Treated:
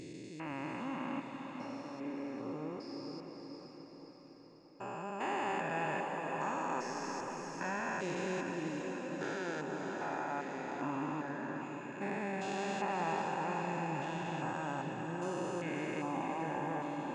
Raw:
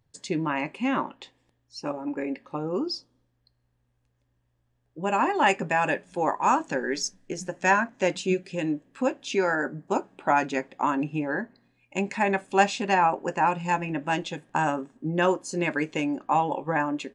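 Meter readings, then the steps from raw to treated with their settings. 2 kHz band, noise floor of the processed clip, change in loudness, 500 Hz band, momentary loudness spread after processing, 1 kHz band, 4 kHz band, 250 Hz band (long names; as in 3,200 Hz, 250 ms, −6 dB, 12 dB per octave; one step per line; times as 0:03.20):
−12.5 dB, −53 dBFS, −12.0 dB, −11.5 dB, 10 LU, −12.0 dB, −13.0 dB, −10.0 dB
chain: spectrum averaged block by block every 400 ms
feedback delay with all-pass diffusion 516 ms, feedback 58%, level −5 dB
level −8 dB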